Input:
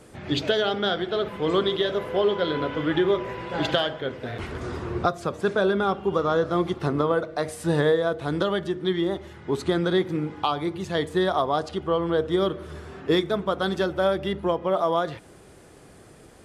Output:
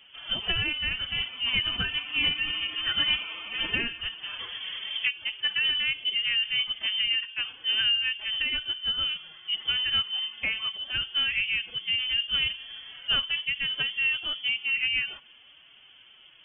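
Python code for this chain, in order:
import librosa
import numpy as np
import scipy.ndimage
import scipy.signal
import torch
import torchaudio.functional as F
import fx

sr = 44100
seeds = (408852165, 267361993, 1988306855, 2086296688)

y = fx.pitch_keep_formants(x, sr, semitones=7.0)
y = fx.freq_invert(y, sr, carrier_hz=3300)
y = y * 10.0 ** (-4.0 / 20.0)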